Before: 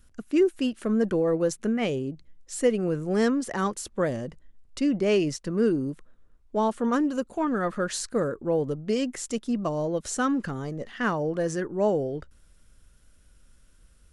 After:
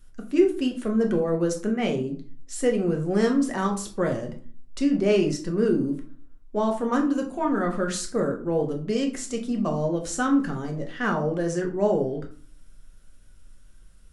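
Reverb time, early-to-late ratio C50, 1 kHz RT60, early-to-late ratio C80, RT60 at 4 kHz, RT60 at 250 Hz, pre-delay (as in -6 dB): 0.40 s, 10.5 dB, 0.40 s, 15.5 dB, 0.25 s, 0.65 s, 3 ms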